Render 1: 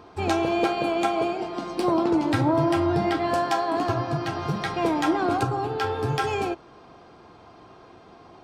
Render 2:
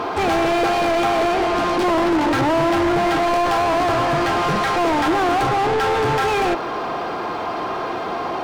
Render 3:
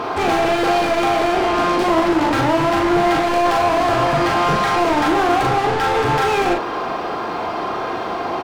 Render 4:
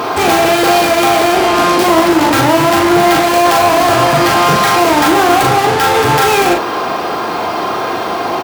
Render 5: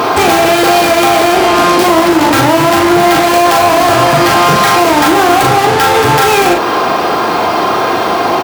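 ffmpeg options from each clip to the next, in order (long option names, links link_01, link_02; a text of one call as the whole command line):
ffmpeg -i in.wav -filter_complex "[0:a]acrusher=bits=11:mix=0:aa=0.000001,asplit=2[link_01][link_02];[link_02]highpass=frequency=720:poles=1,volume=37dB,asoftclip=type=tanh:threshold=-11.5dB[link_03];[link_01][link_03]amix=inputs=2:normalize=0,lowpass=frequency=1800:poles=1,volume=-6dB" out.wav
ffmpeg -i in.wav -filter_complex "[0:a]asplit=2[link_01][link_02];[link_02]adelay=40,volume=-4dB[link_03];[link_01][link_03]amix=inputs=2:normalize=0" out.wav
ffmpeg -i in.wav -af "highpass=65,aemphasis=mode=production:type=50fm,volume=6.5dB" out.wav
ffmpeg -i in.wav -af "acompressor=threshold=-13dB:ratio=3,volume=6dB" out.wav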